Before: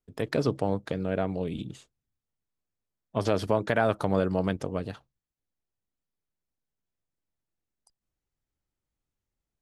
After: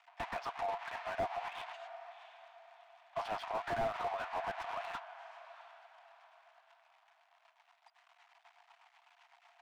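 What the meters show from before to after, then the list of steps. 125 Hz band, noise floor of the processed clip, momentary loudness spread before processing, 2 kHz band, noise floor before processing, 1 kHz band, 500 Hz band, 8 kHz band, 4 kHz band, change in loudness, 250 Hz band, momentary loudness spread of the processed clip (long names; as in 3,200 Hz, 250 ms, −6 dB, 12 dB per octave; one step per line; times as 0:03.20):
−24.0 dB, −71 dBFS, 10 LU, −6.5 dB, below −85 dBFS, −2.5 dB, −12.5 dB, −11.0 dB, −6.5 dB, −11.5 dB, −24.5 dB, 21 LU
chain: converter with a step at zero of −31 dBFS
noise gate −32 dBFS, range −19 dB
high-shelf EQ 2,600 Hz −10 dB
downward compressor 2 to 1, threshold −30 dBFS, peak gain reduction 7 dB
rotating-speaker cabinet horn 8 Hz
Chebyshev high-pass with heavy ripple 680 Hz, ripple 6 dB
head-to-tape spacing loss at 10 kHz 25 dB
on a send: feedback delay with all-pass diffusion 700 ms, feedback 40%, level −15 dB
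on the sum: slew-rate limiting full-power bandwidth 3.3 Hz
level +15.5 dB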